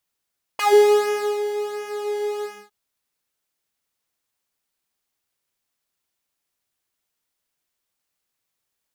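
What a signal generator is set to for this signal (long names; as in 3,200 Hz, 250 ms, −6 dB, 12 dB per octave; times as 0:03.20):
subtractive patch with pulse-width modulation G#4, interval 0 semitones, detune 25 cents, sub −25 dB, filter highpass, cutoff 130 Hz, Q 3.5, filter envelope 4 octaves, filter decay 0.14 s, attack 7.1 ms, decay 0.83 s, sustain −14 dB, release 0.26 s, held 1.85 s, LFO 1.4 Hz, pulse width 21%, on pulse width 11%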